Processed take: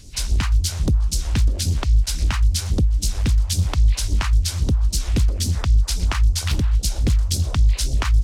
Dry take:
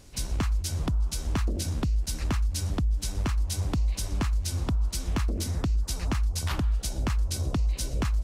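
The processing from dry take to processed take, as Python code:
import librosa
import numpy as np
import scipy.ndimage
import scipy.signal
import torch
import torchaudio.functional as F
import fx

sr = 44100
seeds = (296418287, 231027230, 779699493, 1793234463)

y = fx.phaser_stages(x, sr, stages=2, low_hz=170.0, high_hz=1400.0, hz=3.7, feedback_pct=45)
y = fx.doppler_dist(y, sr, depth_ms=0.87)
y = F.gain(torch.from_numpy(y), 8.0).numpy()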